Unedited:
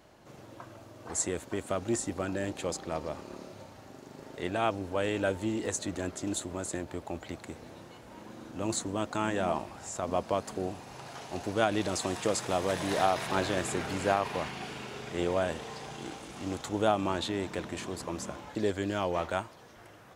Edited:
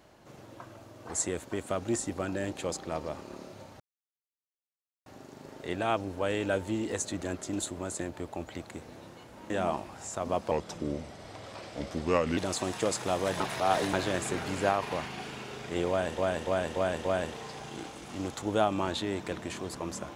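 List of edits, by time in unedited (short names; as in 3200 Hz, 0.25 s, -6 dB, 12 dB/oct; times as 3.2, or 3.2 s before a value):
3.8 insert silence 1.26 s
8.24–9.32 cut
10.33–11.8 speed 79%
12.83–13.36 reverse
15.32–15.61 loop, 5 plays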